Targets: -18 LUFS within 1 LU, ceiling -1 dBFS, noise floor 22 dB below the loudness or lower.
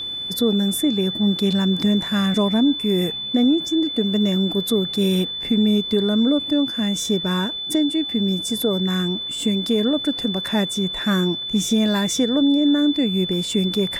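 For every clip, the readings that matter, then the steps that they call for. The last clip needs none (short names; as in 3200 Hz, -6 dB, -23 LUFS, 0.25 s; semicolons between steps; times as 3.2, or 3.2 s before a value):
steady tone 3500 Hz; tone level -26 dBFS; loudness -20.0 LUFS; peak -8.5 dBFS; loudness target -18.0 LUFS
-> notch 3500 Hz, Q 30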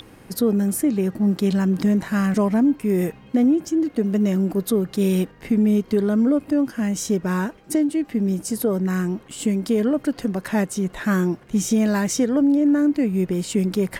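steady tone none; loudness -21.0 LUFS; peak -10.0 dBFS; loudness target -18.0 LUFS
-> gain +3 dB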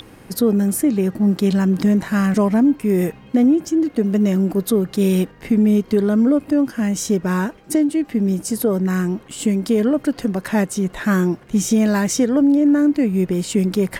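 loudness -18.0 LUFS; peak -7.0 dBFS; noise floor -44 dBFS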